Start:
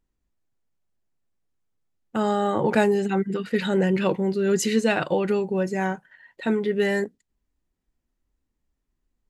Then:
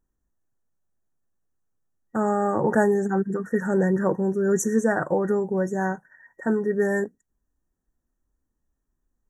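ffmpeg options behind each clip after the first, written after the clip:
ffmpeg -i in.wav -af "afftfilt=real='re*(1-between(b*sr/4096,1900,5500))':imag='im*(1-between(b*sr/4096,1900,5500))':win_size=4096:overlap=0.75" out.wav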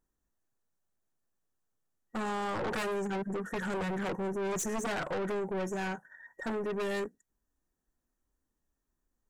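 ffmpeg -i in.wav -af "aeval=exprs='0.112*(abs(mod(val(0)/0.112+3,4)-2)-1)':channel_layout=same,lowshelf=frequency=260:gain=-7,aeval=exprs='(tanh(35.5*val(0)+0.15)-tanh(0.15))/35.5':channel_layout=same" out.wav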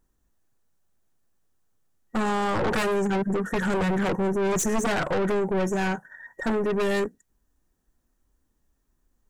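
ffmpeg -i in.wav -af "lowshelf=frequency=180:gain=5,volume=8dB" out.wav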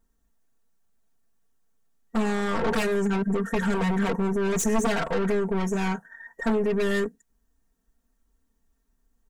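ffmpeg -i in.wav -af "aecho=1:1:4.4:0.8,volume=-3dB" out.wav

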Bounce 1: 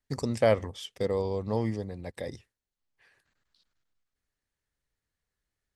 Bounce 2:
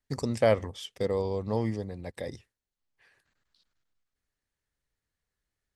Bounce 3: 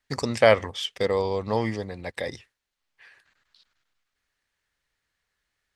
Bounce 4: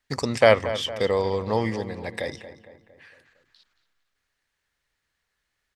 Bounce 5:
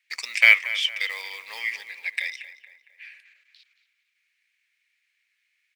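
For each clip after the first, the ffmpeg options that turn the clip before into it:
ffmpeg -i in.wav -af anull out.wav
ffmpeg -i in.wav -af "equalizer=frequency=2200:width=0.3:gain=12" out.wav
ffmpeg -i in.wav -filter_complex "[0:a]asplit=2[link_01][link_02];[link_02]adelay=229,lowpass=frequency=2600:poles=1,volume=-12.5dB,asplit=2[link_03][link_04];[link_04]adelay=229,lowpass=frequency=2600:poles=1,volume=0.51,asplit=2[link_05][link_06];[link_06]adelay=229,lowpass=frequency=2600:poles=1,volume=0.51,asplit=2[link_07][link_08];[link_08]adelay=229,lowpass=frequency=2600:poles=1,volume=0.51,asplit=2[link_09][link_10];[link_10]adelay=229,lowpass=frequency=2600:poles=1,volume=0.51[link_11];[link_01][link_03][link_05][link_07][link_09][link_11]amix=inputs=6:normalize=0,volume=1dB" out.wav
ffmpeg -i in.wav -af "acrusher=bits=7:mode=log:mix=0:aa=0.000001,highpass=frequency=2300:width_type=q:width=7,volume=-1dB" out.wav

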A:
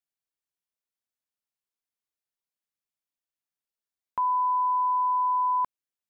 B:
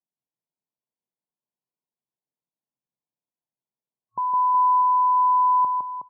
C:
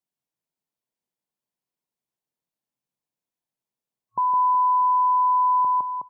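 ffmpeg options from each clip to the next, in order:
ffmpeg -i in.wav -filter_complex "[0:a]afftfilt=real='re*between(b*sr/4096,110,1100)':imag='im*between(b*sr/4096,110,1100)':win_size=4096:overlap=0.75,lowshelf=frequency=210:gain=9.5,asplit=2[link_01][link_02];[link_02]aecho=0:1:160|368|638.4|989.9|1447:0.631|0.398|0.251|0.158|0.1[link_03];[link_01][link_03]amix=inputs=2:normalize=0" out.wav
ffmpeg -i in.wav -af "alimiter=limit=-19dB:level=0:latency=1:release=11,volume=3dB" out.wav

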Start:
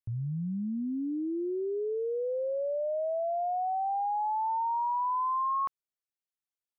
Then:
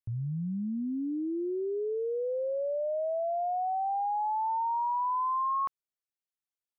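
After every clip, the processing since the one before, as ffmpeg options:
ffmpeg -i in.wav -af anull out.wav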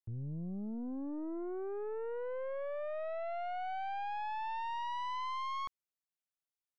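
ffmpeg -i in.wav -af "aeval=exprs='(tanh(44.7*val(0)+0.5)-tanh(0.5))/44.7':channel_layout=same,volume=-3.5dB" out.wav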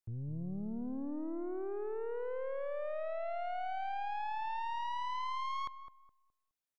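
ffmpeg -i in.wav -filter_complex "[0:a]asplit=2[link_01][link_02];[link_02]adelay=209,lowpass=frequency=970:poles=1,volume=-9dB,asplit=2[link_03][link_04];[link_04]adelay=209,lowpass=frequency=970:poles=1,volume=0.32,asplit=2[link_05][link_06];[link_06]adelay=209,lowpass=frequency=970:poles=1,volume=0.32,asplit=2[link_07][link_08];[link_08]adelay=209,lowpass=frequency=970:poles=1,volume=0.32[link_09];[link_01][link_03][link_05][link_07][link_09]amix=inputs=5:normalize=0" out.wav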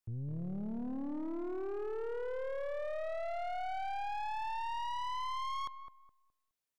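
ffmpeg -i in.wav -af "asoftclip=type=hard:threshold=-34.5dB,volume=1dB" out.wav

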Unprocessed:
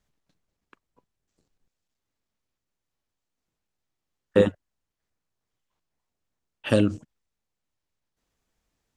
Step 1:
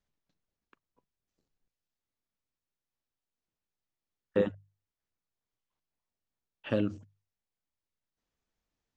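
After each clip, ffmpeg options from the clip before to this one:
ffmpeg -i in.wav -filter_complex "[0:a]acrossover=split=3300[link_01][link_02];[link_02]acompressor=threshold=-50dB:ratio=4:attack=1:release=60[link_03];[link_01][link_03]amix=inputs=2:normalize=0,lowpass=frequency=6900:width=0.5412,lowpass=frequency=6900:width=1.3066,bandreject=frequency=50:width_type=h:width=6,bandreject=frequency=100:width_type=h:width=6,bandreject=frequency=150:width_type=h:width=6,volume=-8.5dB" out.wav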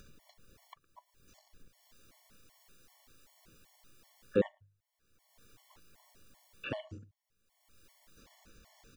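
ffmpeg -i in.wav -filter_complex "[0:a]acompressor=mode=upward:threshold=-34dB:ratio=2.5,asplit=2[link_01][link_02];[link_02]adelay=110.8,volume=-27dB,highshelf=frequency=4000:gain=-2.49[link_03];[link_01][link_03]amix=inputs=2:normalize=0,afftfilt=real='re*gt(sin(2*PI*2.6*pts/sr)*(1-2*mod(floor(b*sr/1024/580),2)),0)':imag='im*gt(sin(2*PI*2.6*pts/sr)*(1-2*mod(floor(b*sr/1024/580),2)),0)':win_size=1024:overlap=0.75" out.wav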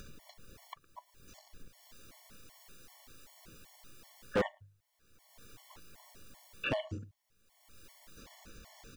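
ffmpeg -i in.wav -af "asoftclip=type=hard:threshold=-32dB,volume=6.5dB" out.wav

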